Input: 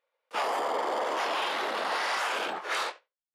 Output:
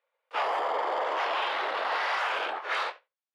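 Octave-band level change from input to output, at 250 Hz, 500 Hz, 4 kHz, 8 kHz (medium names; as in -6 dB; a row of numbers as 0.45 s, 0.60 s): -6.0 dB, 0.0 dB, -1.5 dB, under -10 dB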